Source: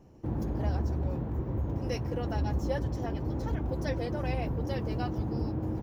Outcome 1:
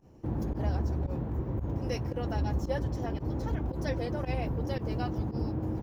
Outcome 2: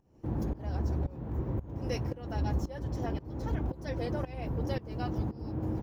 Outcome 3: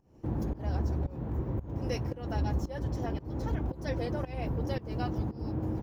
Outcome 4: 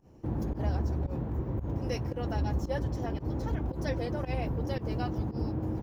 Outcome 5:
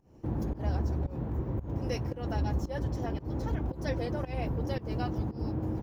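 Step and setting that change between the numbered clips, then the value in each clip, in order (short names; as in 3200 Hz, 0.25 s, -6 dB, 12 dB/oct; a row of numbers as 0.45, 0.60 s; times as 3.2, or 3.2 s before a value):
pump, release: 66, 461, 306, 98, 204 ms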